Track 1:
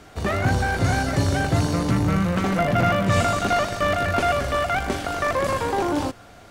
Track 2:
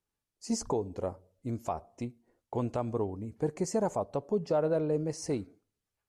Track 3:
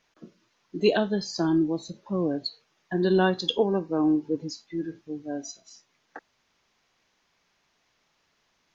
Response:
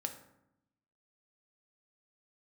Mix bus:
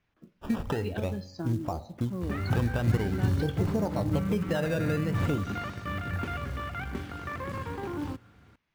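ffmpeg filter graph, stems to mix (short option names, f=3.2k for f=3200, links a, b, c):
-filter_complex "[0:a]highpass=f=56:w=0.5412,highpass=f=56:w=1.3066,equalizer=f=650:t=o:w=0.46:g=-14,adelay=2050,volume=-12dB,asplit=2[a][b];[b]volume=-22dB[c];[1:a]acrusher=samples=14:mix=1:aa=0.000001:lfo=1:lforange=14:lforate=0.47,volume=1.5dB,asplit=3[d][e][f];[e]volume=-10.5dB[g];[2:a]equalizer=f=2.3k:t=o:w=1.7:g=5,volume=-11.5dB[h];[f]apad=whole_len=377345[i];[a][i]sidechaincompress=threshold=-29dB:ratio=8:attack=29:release=482[j];[d][h]amix=inputs=2:normalize=0,equalizer=f=88:w=1.1:g=6.5,acompressor=threshold=-32dB:ratio=8,volume=0dB[k];[3:a]atrim=start_sample=2205[l];[c][g]amix=inputs=2:normalize=0[m];[m][l]afir=irnorm=-1:irlink=0[n];[j][k][n]amix=inputs=3:normalize=0,bass=f=250:g=7,treble=f=4k:g=-11,acrusher=bits=7:mode=log:mix=0:aa=0.000001"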